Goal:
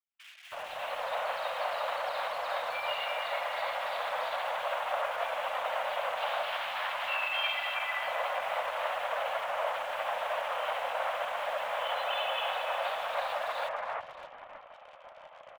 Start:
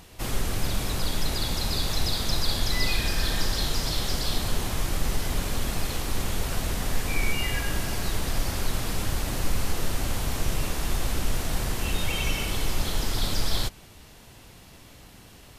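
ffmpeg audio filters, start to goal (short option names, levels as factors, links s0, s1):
-filter_complex "[0:a]alimiter=limit=0.075:level=0:latency=1:release=39,asplit=2[s0][s1];[s1]aecho=0:1:595:0.211[s2];[s0][s2]amix=inputs=2:normalize=0,dynaudnorm=f=370:g=3:m=3.16,asettb=1/sr,asplit=3[s3][s4][s5];[s3]atrim=end=6.174[s6];[s4]atrim=start=6.17:end=7.75,asetpts=PTS-STARTPTS,afade=t=in:d=0.004:c=qsin,afade=t=out:st=1.576:d=0.004:c=qsin,aemphasis=mode=production:type=riaa[s7];[s5]atrim=start=7.746[s8];[s6][s7]acrossfade=d=0.004:c1=hsin:c2=qsin[s9];[s9][s8]acrossfade=d=0.004:c1=qsin:c2=hsin,highpass=f=220:t=q:w=0.5412,highpass=f=220:t=q:w=1.307,lowpass=f=2800:t=q:w=0.5176,lowpass=f=2800:t=q:w=0.7071,lowpass=f=2800:t=q:w=1.932,afreqshift=350,asplit=2[s10][s11];[s11]acrusher=bits=5:mix=0:aa=0.000001,volume=0.376[s12];[s10][s12]amix=inputs=2:normalize=0,highshelf=f=2300:g=-5,anlmdn=0.0631,flanger=delay=0.8:depth=9.9:regen=-77:speed=0.22:shape=triangular,acrossover=split=2200[s13][s14];[s13]adelay=320[s15];[s15][s14]amix=inputs=2:normalize=0"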